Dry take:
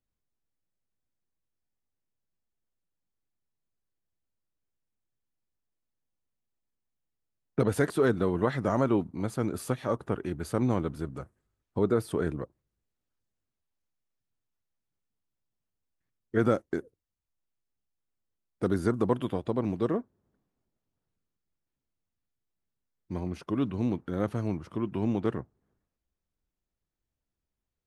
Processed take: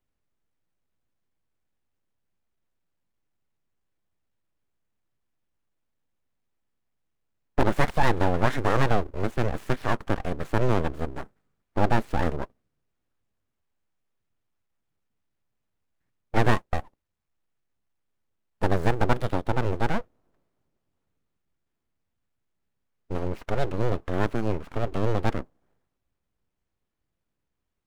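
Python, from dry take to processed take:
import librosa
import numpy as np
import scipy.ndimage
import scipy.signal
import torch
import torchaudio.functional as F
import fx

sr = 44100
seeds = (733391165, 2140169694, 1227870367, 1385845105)

y = scipy.ndimage.median_filter(x, 9, mode='constant')
y = np.abs(y)
y = F.gain(torch.from_numpy(y), 6.5).numpy()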